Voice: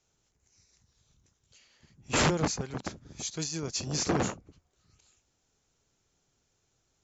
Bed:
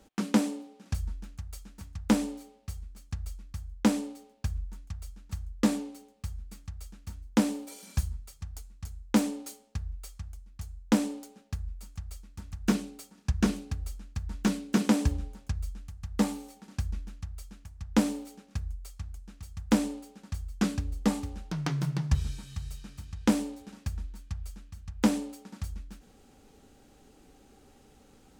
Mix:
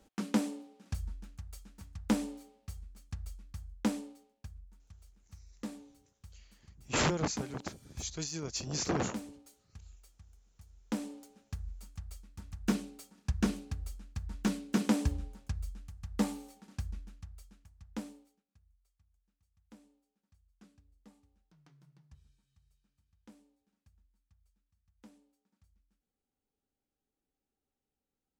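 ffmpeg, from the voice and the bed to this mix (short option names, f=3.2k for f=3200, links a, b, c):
-filter_complex "[0:a]adelay=4800,volume=-4dB[a];[1:a]volume=6.5dB,afade=t=out:st=3.63:d=0.88:silence=0.281838,afade=t=in:st=10.66:d=1.03:silence=0.251189,afade=t=out:st=16.42:d=2.02:silence=0.0375837[b];[a][b]amix=inputs=2:normalize=0"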